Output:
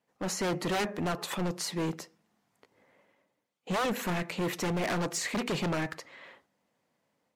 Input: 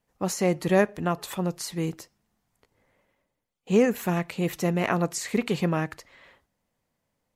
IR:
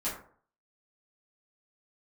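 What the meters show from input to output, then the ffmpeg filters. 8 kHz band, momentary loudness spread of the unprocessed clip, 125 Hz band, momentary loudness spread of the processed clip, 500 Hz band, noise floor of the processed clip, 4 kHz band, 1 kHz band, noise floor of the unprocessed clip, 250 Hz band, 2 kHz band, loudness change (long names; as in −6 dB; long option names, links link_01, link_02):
−2.0 dB, 8 LU, −6.5 dB, 9 LU, −8.0 dB, −80 dBFS, +1.5 dB, −3.0 dB, −80 dBFS, −7.0 dB, −2.5 dB, −5.5 dB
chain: -filter_complex "[0:a]asplit=2[link_01][link_02];[1:a]atrim=start_sample=2205,lowshelf=frequency=240:gain=8.5[link_03];[link_02][link_03]afir=irnorm=-1:irlink=0,volume=-28dB[link_04];[link_01][link_04]amix=inputs=2:normalize=0,aeval=exprs='0.112*(abs(mod(val(0)/0.112+3,4)-2)-1)':channel_layout=same,highshelf=frequency=7900:gain=-10.5,dynaudnorm=framelen=260:gausssize=3:maxgain=4dB,highpass=190,asoftclip=type=hard:threshold=-27dB" -ar 48000 -c:a libmp3lame -b:a 96k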